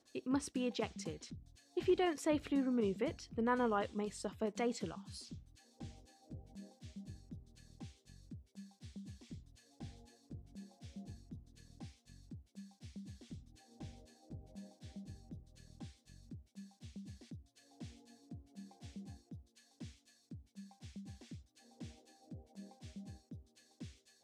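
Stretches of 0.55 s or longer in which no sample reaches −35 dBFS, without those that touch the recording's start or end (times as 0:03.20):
0:01.09–0:01.77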